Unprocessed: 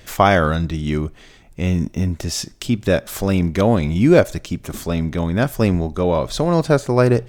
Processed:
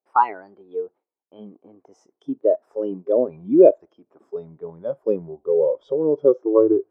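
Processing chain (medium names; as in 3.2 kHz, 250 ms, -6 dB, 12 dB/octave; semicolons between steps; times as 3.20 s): gliding tape speed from 124% -> 87%; spectral noise reduction 20 dB; gate with hold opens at -46 dBFS; Chebyshev band-pass 360–1000 Hz, order 2; trim +2.5 dB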